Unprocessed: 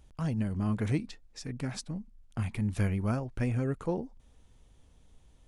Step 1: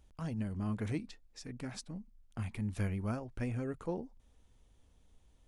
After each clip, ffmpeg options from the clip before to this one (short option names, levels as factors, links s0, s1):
-af "equalizer=f=140:w=6.7:g=-8.5,volume=0.531"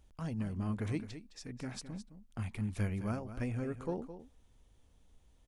-af "aecho=1:1:213:0.251"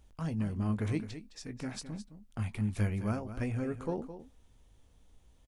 -filter_complex "[0:a]asplit=2[s0][s1];[s1]adelay=19,volume=0.251[s2];[s0][s2]amix=inputs=2:normalize=0,volume=1.33"